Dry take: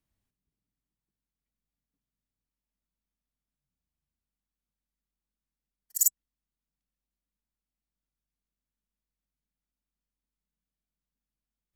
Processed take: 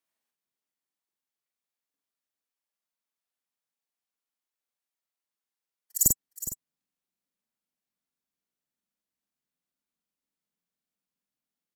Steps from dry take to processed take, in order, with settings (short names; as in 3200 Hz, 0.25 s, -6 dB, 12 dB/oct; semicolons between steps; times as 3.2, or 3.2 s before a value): HPF 520 Hz 12 dB/oct, from 6.06 s 200 Hz; doubler 45 ms -2.5 dB; echo 0.413 s -13 dB